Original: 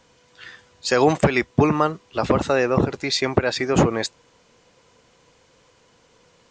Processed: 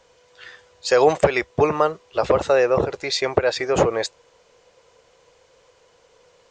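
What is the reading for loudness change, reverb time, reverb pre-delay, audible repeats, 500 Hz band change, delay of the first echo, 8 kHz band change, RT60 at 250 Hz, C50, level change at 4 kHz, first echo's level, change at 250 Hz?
+0.5 dB, no reverb audible, no reverb audible, no echo audible, +3.0 dB, no echo audible, −1.0 dB, no reverb audible, no reverb audible, −1.0 dB, no echo audible, −7.0 dB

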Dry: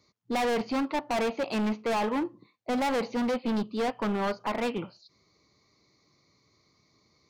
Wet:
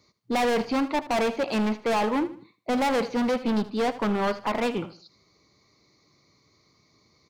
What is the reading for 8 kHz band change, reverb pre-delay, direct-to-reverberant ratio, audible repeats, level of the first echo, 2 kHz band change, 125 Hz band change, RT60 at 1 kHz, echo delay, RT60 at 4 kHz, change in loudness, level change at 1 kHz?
+3.5 dB, no reverb audible, no reverb audible, 3, −15.5 dB, +3.5 dB, +3.5 dB, no reverb audible, 78 ms, no reverb audible, +3.5 dB, +3.5 dB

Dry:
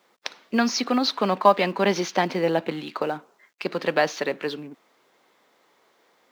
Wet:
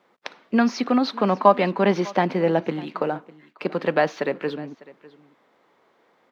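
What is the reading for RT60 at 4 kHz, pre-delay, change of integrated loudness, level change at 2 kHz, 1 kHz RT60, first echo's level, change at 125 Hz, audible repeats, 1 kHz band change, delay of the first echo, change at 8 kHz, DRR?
no reverb audible, no reverb audible, +1.5 dB, −1.0 dB, no reverb audible, −21.0 dB, +4.5 dB, 1, +1.0 dB, 601 ms, can't be measured, no reverb audible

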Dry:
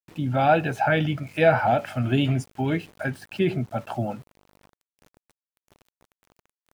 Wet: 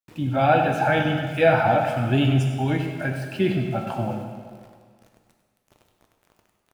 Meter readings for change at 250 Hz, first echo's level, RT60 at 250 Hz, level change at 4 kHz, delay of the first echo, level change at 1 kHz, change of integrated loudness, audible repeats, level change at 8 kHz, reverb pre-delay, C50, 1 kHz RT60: +2.0 dB, −11.5 dB, 1.8 s, +2.5 dB, 98 ms, +2.0 dB, +2.0 dB, 1, +2.0 dB, 5 ms, 4.0 dB, 1.8 s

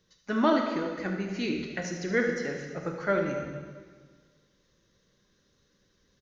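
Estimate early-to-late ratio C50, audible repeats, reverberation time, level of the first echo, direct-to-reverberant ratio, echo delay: 3.5 dB, 1, 1.6 s, −10.0 dB, 2.5 dB, 76 ms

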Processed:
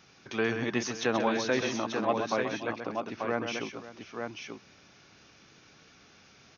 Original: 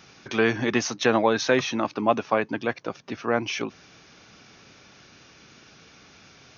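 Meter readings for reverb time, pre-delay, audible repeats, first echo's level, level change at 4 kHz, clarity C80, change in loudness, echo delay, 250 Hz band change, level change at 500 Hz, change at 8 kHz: no reverb audible, no reverb audible, 3, −7.5 dB, −6.0 dB, no reverb audible, −6.5 dB, 132 ms, −5.5 dB, −6.0 dB, can't be measured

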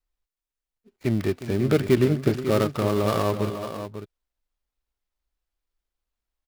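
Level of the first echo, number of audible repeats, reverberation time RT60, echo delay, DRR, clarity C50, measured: −13.0 dB, 2, no reverb audible, 359 ms, no reverb audible, no reverb audible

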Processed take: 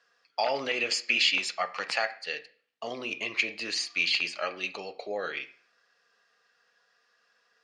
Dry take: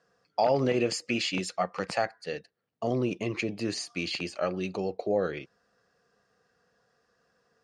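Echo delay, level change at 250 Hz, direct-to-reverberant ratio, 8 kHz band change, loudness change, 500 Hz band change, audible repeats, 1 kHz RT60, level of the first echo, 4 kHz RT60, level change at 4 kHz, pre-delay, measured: no echo audible, −12.5 dB, 8.0 dB, +1.5 dB, +1.5 dB, −6.0 dB, no echo audible, 0.45 s, no echo audible, 0.40 s, +7.5 dB, 3 ms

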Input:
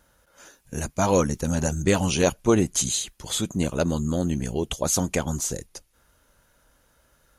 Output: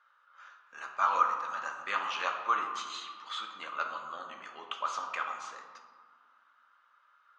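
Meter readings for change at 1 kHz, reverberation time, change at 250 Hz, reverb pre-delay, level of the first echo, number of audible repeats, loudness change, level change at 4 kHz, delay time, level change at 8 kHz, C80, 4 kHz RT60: +2.0 dB, 1.9 s, −33.0 dB, 3 ms, no echo audible, no echo audible, −9.5 dB, −9.5 dB, no echo audible, −25.0 dB, 7.0 dB, 0.85 s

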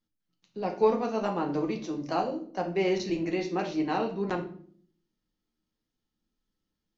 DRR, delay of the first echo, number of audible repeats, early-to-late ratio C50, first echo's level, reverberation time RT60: 1.5 dB, no echo audible, no echo audible, 10.0 dB, no echo audible, 0.55 s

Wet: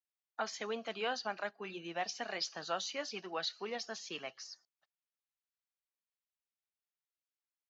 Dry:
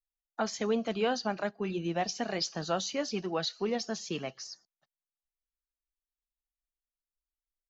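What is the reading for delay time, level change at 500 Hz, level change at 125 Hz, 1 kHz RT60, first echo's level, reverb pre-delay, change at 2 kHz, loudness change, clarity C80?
no echo audible, −8.5 dB, −17.0 dB, no reverb audible, no echo audible, no reverb audible, −2.0 dB, −7.0 dB, no reverb audible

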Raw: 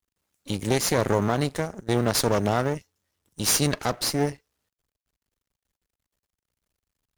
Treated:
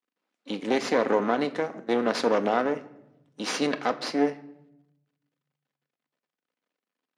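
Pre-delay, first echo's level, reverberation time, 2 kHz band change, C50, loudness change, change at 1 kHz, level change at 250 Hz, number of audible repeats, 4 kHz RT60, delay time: 4 ms, no echo audible, 0.85 s, 0.0 dB, 16.5 dB, −2.0 dB, +0.5 dB, −0.5 dB, no echo audible, 0.55 s, no echo audible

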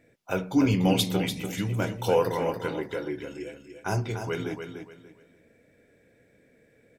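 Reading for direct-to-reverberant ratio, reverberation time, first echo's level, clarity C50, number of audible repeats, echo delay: no reverb audible, no reverb audible, −7.5 dB, no reverb audible, 3, 292 ms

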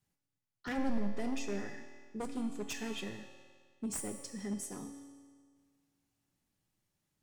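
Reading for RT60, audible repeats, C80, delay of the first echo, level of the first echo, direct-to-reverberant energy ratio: 1.8 s, no echo audible, 9.0 dB, no echo audible, no echo audible, 5.5 dB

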